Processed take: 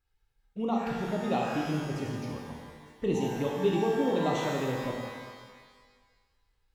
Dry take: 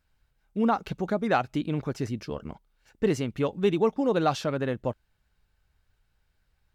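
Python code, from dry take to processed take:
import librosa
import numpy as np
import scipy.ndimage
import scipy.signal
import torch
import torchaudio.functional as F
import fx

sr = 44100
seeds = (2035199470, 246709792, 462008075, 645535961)

y = fx.env_flanger(x, sr, rest_ms=2.4, full_db=-23.5)
y = fx.rev_shimmer(y, sr, seeds[0], rt60_s=1.5, semitones=12, shimmer_db=-8, drr_db=-1.5)
y = F.gain(torch.from_numpy(y), -5.5).numpy()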